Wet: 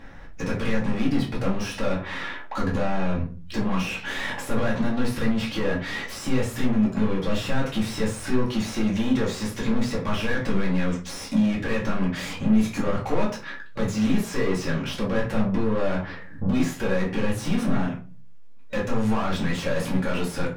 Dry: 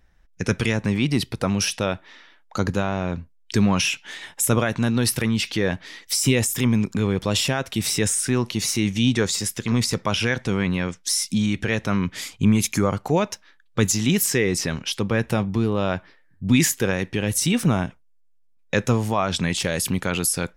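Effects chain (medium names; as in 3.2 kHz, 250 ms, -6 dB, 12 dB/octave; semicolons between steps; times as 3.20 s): bass shelf 200 Hz +9.5 dB; compression 4:1, threshold -31 dBFS, peak gain reduction 19.5 dB; overdrive pedal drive 34 dB, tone 1.3 kHz, clips at -15.5 dBFS; simulated room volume 200 m³, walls furnished, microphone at 2.3 m; trim -6.5 dB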